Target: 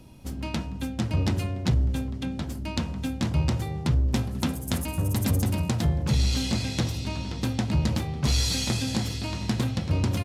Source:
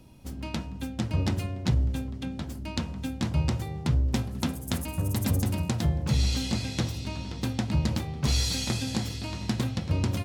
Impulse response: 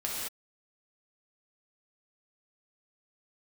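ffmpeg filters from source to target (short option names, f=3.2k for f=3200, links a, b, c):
-filter_complex "[0:a]asplit=2[a][b];[b]volume=29dB,asoftclip=hard,volume=-29dB,volume=-6dB[c];[a][c]amix=inputs=2:normalize=0,aresample=32000,aresample=44100"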